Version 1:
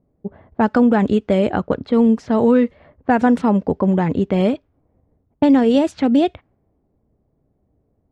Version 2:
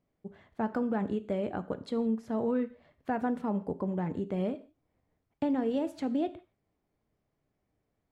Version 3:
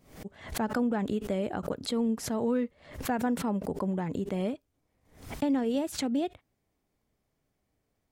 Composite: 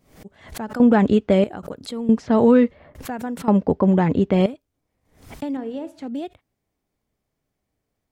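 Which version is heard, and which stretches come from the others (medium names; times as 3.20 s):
3
0.80–1.44 s: from 1
2.09–2.95 s: from 1
3.48–4.46 s: from 1
5.57–6.08 s: from 2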